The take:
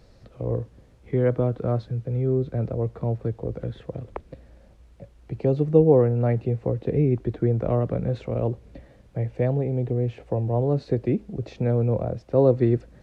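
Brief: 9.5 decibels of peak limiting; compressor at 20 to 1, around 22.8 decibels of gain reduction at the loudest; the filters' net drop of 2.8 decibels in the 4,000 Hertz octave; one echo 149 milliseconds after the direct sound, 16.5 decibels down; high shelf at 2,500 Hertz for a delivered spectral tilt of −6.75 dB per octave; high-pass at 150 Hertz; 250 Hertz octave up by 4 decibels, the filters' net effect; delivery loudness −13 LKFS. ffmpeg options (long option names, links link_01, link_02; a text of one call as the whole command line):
ffmpeg -i in.wav -af "highpass=150,equalizer=frequency=250:width_type=o:gain=6,highshelf=frequency=2500:gain=5,equalizer=frequency=4000:width_type=o:gain=-7.5,acompressor=threshold=-32dB:ratio=20,alimiter=level_in=5dB:limit=-24dB:level=0:latency=1,volume=-5dB,aecho=1:1:149:0.15,volume=27.5dB" out.wav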